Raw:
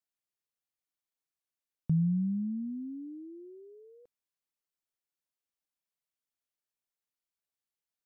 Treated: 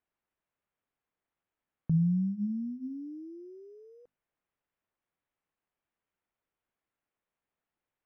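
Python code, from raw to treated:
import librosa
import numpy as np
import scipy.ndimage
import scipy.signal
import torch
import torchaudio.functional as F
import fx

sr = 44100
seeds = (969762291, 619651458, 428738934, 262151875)

y = fx.hum_notches(x, sr, base_hz=50, count=5)
y = np.interp(np.arange(len(y)), np.arange(len(y))[::8], y[::8])
y = y * librosa.db_to_amplitude(1.5)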